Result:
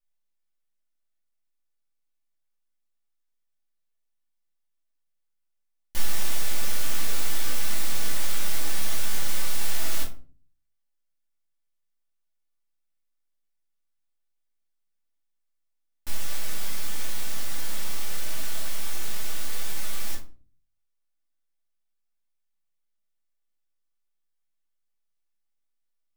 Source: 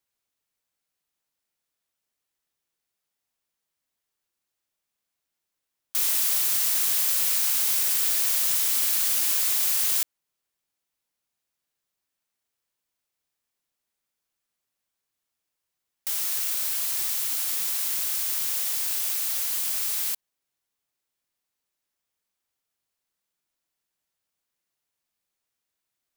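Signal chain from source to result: full-wave rectifier; shoebox room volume 250 m³, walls furnished, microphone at 2.5 m; gain -9 dB

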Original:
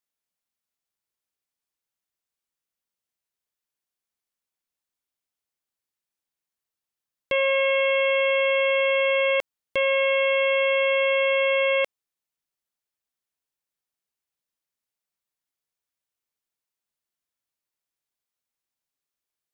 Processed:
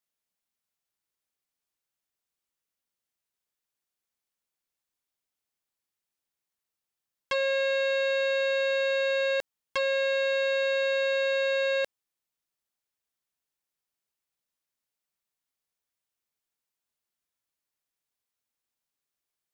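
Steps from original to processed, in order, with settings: core saturation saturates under 1600 Hz

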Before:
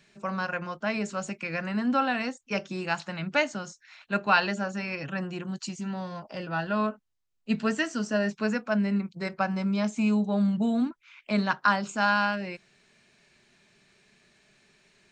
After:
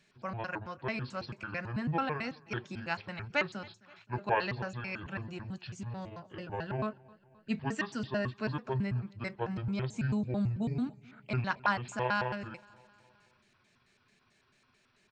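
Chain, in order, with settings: trilling pitch shifter -8.5 st, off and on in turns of 0.11 s; feedback echo 0.262 s, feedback 59%, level -24 dB; dynamic EQ 2100 Hz, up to +4 dB, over -47 dBFS, Q 3.3; gain -6.5 dB

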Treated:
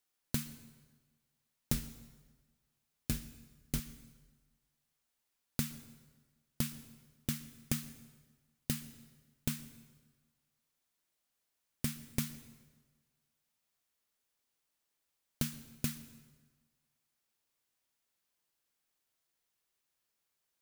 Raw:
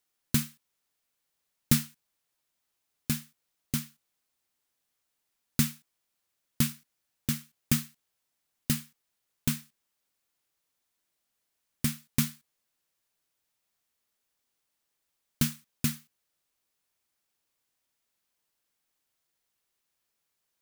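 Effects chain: 1.72–3.8 octaver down 2 oct, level 0 dB; compressor 5:1, threshold -27 dBFS, peak gain reduction 10.5 dB; reverb RT60 1.4 s, pre-delay 0.108 s, DRR 15 dB; gain -3 dB

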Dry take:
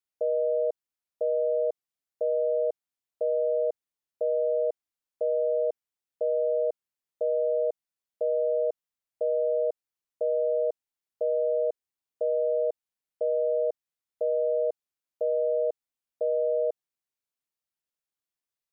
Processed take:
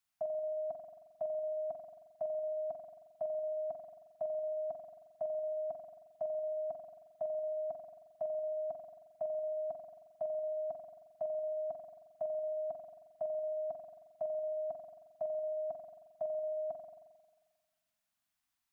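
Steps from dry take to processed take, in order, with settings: Chebyshev band-stop 290–670 Hz, order 4; spring tank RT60 1.4 s, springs 44 ms, chirp 35 ms, DRR 3.5 dB; gain +6 dB

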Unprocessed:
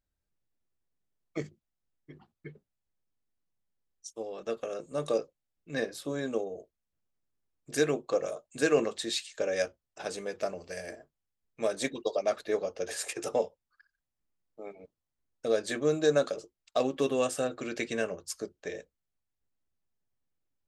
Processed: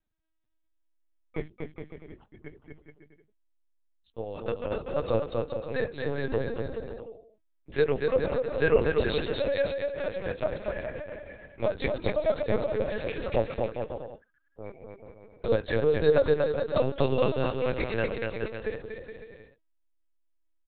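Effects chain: dynamic EQ 120 Hz, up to -4 dB, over -55 dBFS, Q 3.4; on a send: bouncing-ball echo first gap 0.24 s, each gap 0.75×, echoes 5; on the sum: LPC vocoder at 8 kHz pitch kept; gain +2.5 dB

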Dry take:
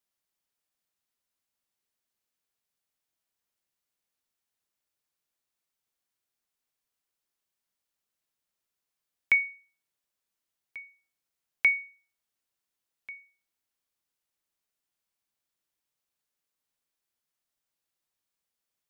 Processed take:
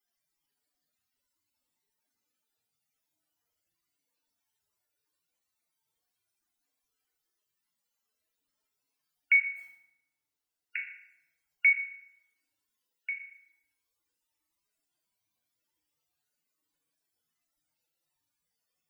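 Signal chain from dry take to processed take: 9.55–10.77 spectral limiter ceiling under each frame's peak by 26 dB; limiter -23.5 dBFS, peak gain reduction 10.5 dB; loudest bins only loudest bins 64; FDN reverb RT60 0.84 s, low-frequency decay 1.35×, high-frequency decay 0.8×, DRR -1 dB; gain +7.5 dB

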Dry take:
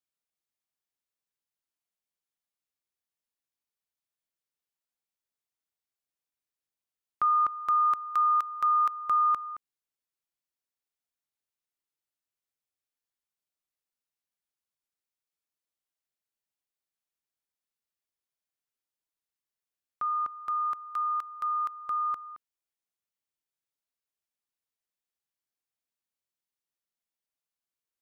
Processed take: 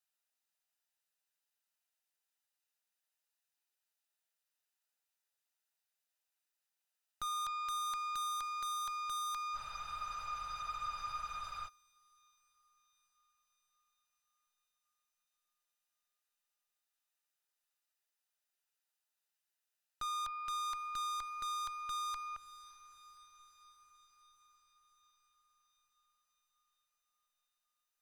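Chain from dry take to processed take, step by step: HPF 730 Hz 12 dB/oct; notch comb 1100 Hz; tube stage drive 45 dB, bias 0.6; on a send: diffused feedback echo 0.592 s, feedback 63%, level -15 dB; on the sum: spectral freeze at 9.57, 2.10 s; gain +7.5 dB

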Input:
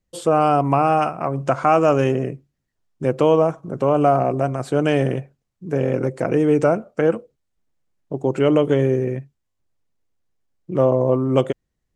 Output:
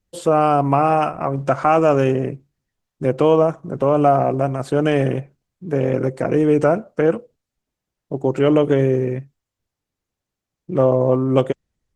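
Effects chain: gain +1.5 dB; Opus 16 kbps 48000 Hz

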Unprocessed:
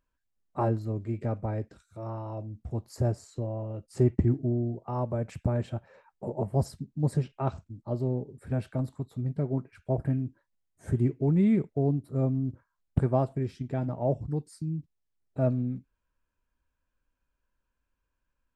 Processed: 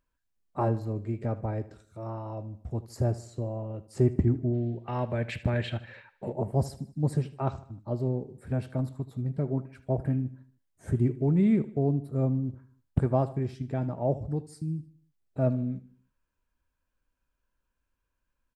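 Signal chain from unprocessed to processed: 4.53–6.33 band shelf 2600 Hz +14.5 dB; feedback echo 77 ms, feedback 46%, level -17 dB

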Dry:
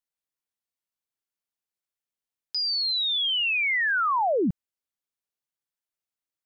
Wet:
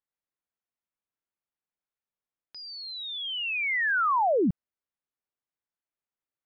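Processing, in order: LPF 2100 Hz 12 dB/oct

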